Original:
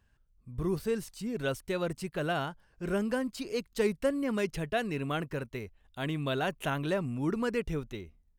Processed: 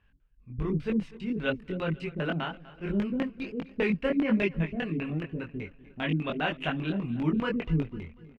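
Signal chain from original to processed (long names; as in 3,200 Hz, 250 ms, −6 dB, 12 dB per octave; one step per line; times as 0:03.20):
auto-filter low-pass square 5 Hz 250–2,600 Hz
repeating echo 247 ms, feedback 47%, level −19 dB
multi-voice chorus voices 6, 0.97 Hz, delay 22 ms, depth 3.8 ms
level +4 dB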